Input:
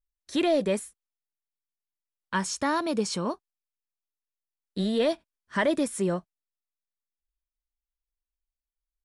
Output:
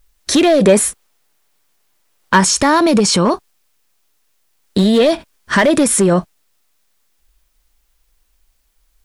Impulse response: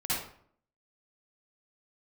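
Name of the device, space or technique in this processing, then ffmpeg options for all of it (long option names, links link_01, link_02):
loud club master: -filter_complex "[0:a]acompressor=threshold=-27dB:ratio=2.5,asoftclip=type=hard:threshold=-24dB,alimiter=level_in=35dB:limit=-1dB:release=50:level=0:latency=1,asettb=1/sr,asplit=3[link_01][link_02][link_03];[link_01]atrim=end=0.644[link_04];[link_02]atrim=start=0.64:end=2.41,asetpts=PTS-STARTPTS,afade=type=in:duration=0.004:curve=qsin,afade=type=out:start_time=1.766:duration=0.004:curve=qsin,equalizer=frequency=670:width=0.38:gain=4[link_05];[link_03]atrim=start=2.406[link_06];[link_04][link_05]acrossfade=duration=0.004:curve1=hsin:curve2=qsin[link_07];[link_07][link_06]acrossfade=duration=0.004:curve1=qsin:curve2=hsin,volume=-5.5dB"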